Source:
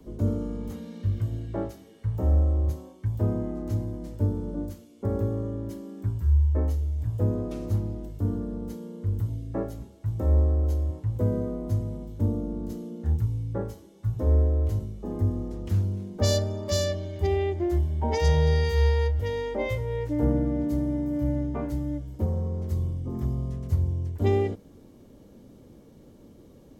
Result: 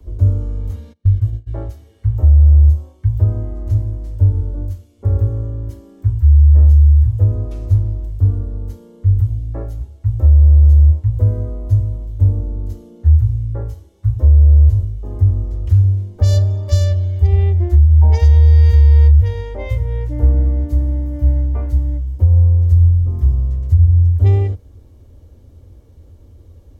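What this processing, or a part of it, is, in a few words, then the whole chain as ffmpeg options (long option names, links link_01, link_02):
car stereo with a boomy subwoofer: -filter_complex "[0:a]asplit=3[link_01][link_02][link_03];[link_01]afade=type=out:start_time=0.92:duration=0.02[link_04];[link_02]agate=range=-29dB:threshold=-29dB:ratio=16:detection=peak,afade=type=in:start_time=0.92:duration=0.02,afade=type=out:start_time=1.46:duration=0.02[link_05];[link_03]afade=type=in:start_time=1.46:duration=0.02[link_06];[link_04][link_05][link_06]amix=inputs=3:normalize=0,lowshelf=frequency=120:width_type=q:width=3:gain=12.5,alimiter=limit=-3.5dB:level=0:latency=1:release=136"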